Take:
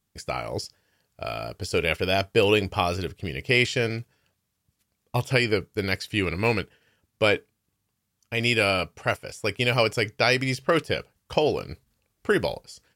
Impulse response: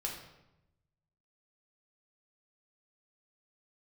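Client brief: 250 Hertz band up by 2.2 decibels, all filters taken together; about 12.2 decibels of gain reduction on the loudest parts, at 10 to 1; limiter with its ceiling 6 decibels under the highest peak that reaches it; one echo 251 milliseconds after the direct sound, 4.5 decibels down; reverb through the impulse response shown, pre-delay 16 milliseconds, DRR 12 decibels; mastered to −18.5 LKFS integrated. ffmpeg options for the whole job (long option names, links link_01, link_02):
-filter_complex "[0:a]equalizer=frequency=250:width_type=o:gain=3,acompressor=threshold=-28dB:ratio=10,alimiter=limit=-21.5dB:level=0:latency=1,aecho=1:1:251:0.596,asplit=2[link_01][link_02];[1:a]atrim=start_sample=2205,adelay=16[link_03];[link_02][link_03]afir=irnorm=-1:irlink=0,volume=-13.5dB[link_04];[link_01][link_04]amix=inputs=2:normalize=0,volume=15.5dB"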